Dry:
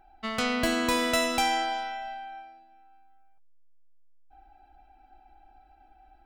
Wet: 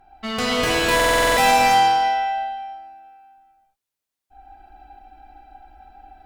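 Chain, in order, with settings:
asymmetric clip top −29.5 dBFS
reverb whose tail is shaped and stops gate 380 ms flat, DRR −6 dB
buffer that repeats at 0:00.95, samples 2,048, times 8
level +4 dB

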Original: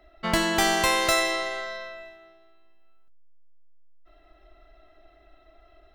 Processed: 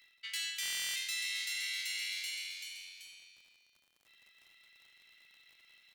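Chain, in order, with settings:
Butterworth high-pass 2,100 Hz 36 dB per octave
in parallel at −11 dB: gain into a clipping stage and back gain 27 dB
on the sum: surface crackle 76 per second −56 dBFS
echo with shifted repeats 384 ms, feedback 46%, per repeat +91 Hz, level −7 dB
reversed playback
downward compressor 12 to 1, threshold −39 dBFS, peak gain reduction 19 dB
reversed playback
buffer that repeats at 0:00.61, samples 1,024, times 14
level +4 dB

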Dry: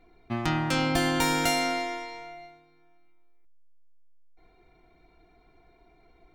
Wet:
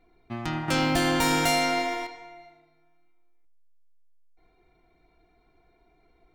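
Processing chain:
0:00.68–0:02.07: leveller curve on the samples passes 2
tape delay 76 ms, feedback 62%, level −13 dB, low-pass 3,100 Hz
level −4 dB

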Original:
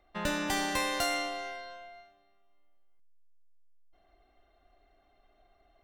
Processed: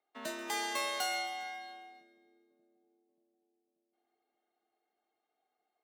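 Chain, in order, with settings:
noise reduction from a noise print of the clip's start 8 dB
leveller curve on the samples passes 1
high-pass filter 160 Hz 24 dB per octave
echo with a time of its own for lows and highs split 350 Hz, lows 584 ms, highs 135 ms, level −15.5 dB
frequency shifter +49 Hz
level −6 dB

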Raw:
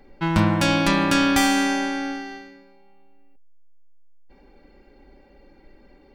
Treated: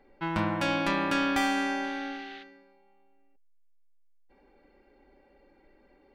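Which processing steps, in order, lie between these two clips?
bass and treble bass −8 dB, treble −10 dB
0:01.83–0:02.42: noise in a band 1,400–3,900 Hz −44 dBFS
level −6 dB

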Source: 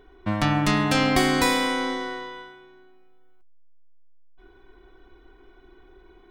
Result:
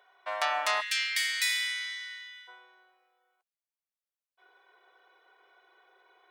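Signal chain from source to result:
elliptic high-pass filter 590 Hz, stop band 80 dB, from 0:00.80 1,800 Hz, from 0:02.47 510 Hz
level −2 dB

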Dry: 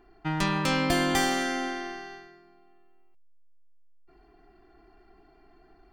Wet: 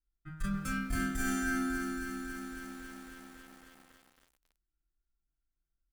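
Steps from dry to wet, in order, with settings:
running median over 3 samples
noise reduction from a noise print of the clip's start 11 dB
noise gate −56 dBFS, range −27 dB
drawn EQ curve 160 Hz 0 dB, 460 Hz −20 dB, 910 Hz −26 dB, 1,400 Hz −3 dB, 2,700 Hz −18 dB, 4,400 Hz −15 dB, 9,900 Hz +5 dB
convolution reverb RT60 0.25 s, pre-delay 3 ms, DRR −5.5 dB
tube saturation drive 10 dB, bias 0.4
reversed playback
downward compressor 20 to 1, threshold −30 dBFS, peak gain reduction 13.5 dB
reversed playback
high-shelf EQ 5,200 Hz −5.5 dB
feedback echo at a low word length 274 ms, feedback 80%, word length 9 bits, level −7 dB

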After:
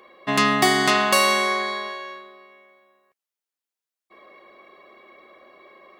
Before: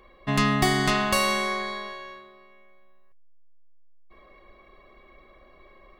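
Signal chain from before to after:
high-pass filter 280 Hz 12 dB per octave
level +5.5 dB

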